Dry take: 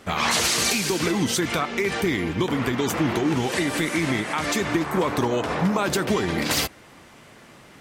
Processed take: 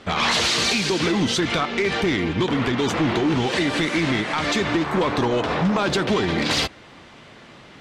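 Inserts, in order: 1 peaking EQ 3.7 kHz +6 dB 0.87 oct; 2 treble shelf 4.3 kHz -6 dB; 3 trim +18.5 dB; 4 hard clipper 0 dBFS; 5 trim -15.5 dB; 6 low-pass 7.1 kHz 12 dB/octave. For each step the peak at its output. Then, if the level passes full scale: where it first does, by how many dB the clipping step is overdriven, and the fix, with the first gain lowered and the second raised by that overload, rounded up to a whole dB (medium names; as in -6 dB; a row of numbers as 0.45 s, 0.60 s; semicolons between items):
-7.5 dBFS, -10.0 dBFS, +8.5 dBFS, 0.0 dBFS, -15.5 dBFS, -14.5 dBFS; step 3, 8.5 dB; step 3 +9.5 dB, step 5 -6.5 dB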